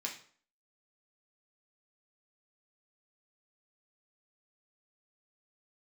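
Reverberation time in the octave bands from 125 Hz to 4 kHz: 0.45, 0.50, 0.50, 0.50, 0.45, 0.40 s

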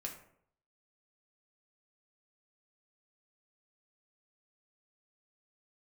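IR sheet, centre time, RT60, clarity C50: 20 ms, 0.65 s, 8.0 dB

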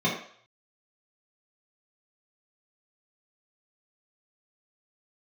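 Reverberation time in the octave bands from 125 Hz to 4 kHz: 0.40, 0.40, 0.55, 0.60, 0.50, 0.60 s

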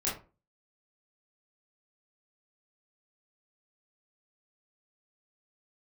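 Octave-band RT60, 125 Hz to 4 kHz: 0.40, 0.40, 0.35, 0.30, 0.25, 0.20 s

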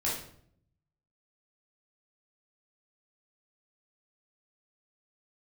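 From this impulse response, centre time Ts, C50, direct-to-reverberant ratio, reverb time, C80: 44 ms, 2.5 dB, -7.0 dB, 0.60 s, 8.0 dB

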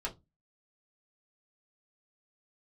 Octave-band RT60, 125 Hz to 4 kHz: 0.35, 0.35, 0.20, 0.20, 0.15, 0.15 s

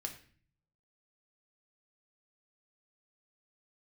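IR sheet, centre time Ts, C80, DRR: 13 ms, 14.0 dB, 3.0 dB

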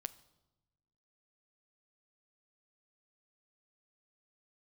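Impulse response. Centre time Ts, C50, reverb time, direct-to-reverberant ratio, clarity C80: 3 ms, 18.5 dB, 1.0 s, 13.5 dB, 21.0 dB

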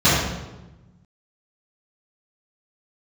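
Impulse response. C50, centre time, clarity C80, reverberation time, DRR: -0.5 dB, 77 ms, 2.0 dB, 1.1 s, -14.0 dB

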